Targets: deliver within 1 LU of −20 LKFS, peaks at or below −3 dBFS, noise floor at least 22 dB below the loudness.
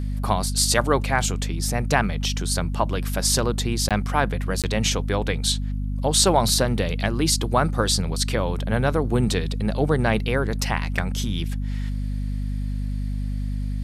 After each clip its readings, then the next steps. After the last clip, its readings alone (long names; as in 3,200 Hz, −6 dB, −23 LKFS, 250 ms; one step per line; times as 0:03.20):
number of dropouts 2; longest dropout 17 ms; mains hum 50 Hz; hum harmonics up to 250 Hz; level of the hum −24 dBFS; integrated loudness −23.0 LKFS; sample peak −4.0 dBFS; target loudness −20.0 LKFS
→ repair the gap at 0:03.89/0:04.62, 17 ms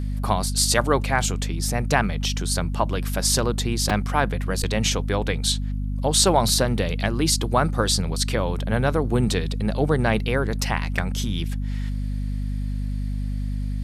number of dropouts 0; mains hum 50 Hz; hum harmonics up to 250 Hz; level of the hum −24 dBFS
→ hum removal 50 Hz, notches 5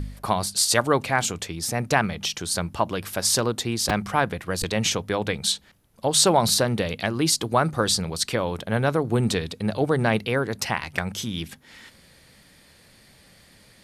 mains hum none found; integrated loudness −23.5 LKFS; sample peak −5.0 dBFS; target loudness −20.0 LKFS
→ level +3.5 dB
brickwall limiter −3 dBFS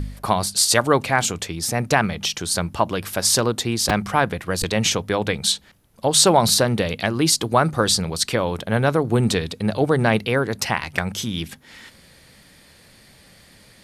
integrated loudness −20.0 LKFS; sample peak −3.0 dBFS; background noise floor −51 dBFS